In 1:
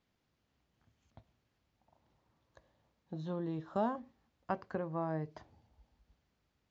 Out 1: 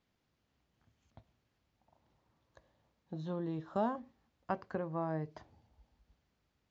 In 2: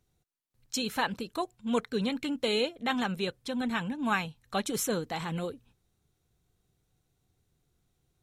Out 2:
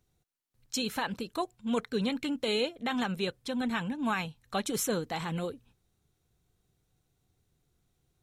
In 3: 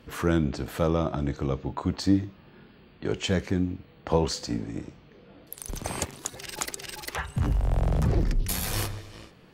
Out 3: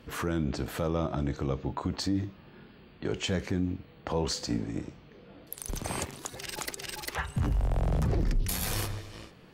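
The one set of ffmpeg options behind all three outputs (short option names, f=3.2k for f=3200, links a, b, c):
-af "alimiter=limit=-20dB:level=0:latency=1:release=49"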